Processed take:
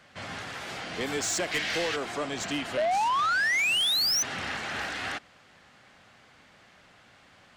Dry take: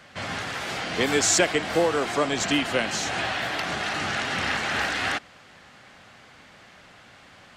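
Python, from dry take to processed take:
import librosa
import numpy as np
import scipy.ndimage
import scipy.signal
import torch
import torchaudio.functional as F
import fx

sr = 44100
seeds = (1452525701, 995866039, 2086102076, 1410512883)

y = fx.band_shelf(x, sr, hz=3300.0, db=12.0, octaves=2.3, at=(1.51, 1.95), fade=0.02)
y = fx.spec_paint(y, sr, seeds[0], shape='rise', start_s=2.77, length_s=1.46, low_hz=580.0, high_hz=6200.0, level_db=-14.0)
y = 10.0 ** (-16.5 / 20.0) * np.tanh(y / 10.0 ** (-16.5 / 20.0))
y = F.gain(torch.from_numpy(y), -6.5).numpy()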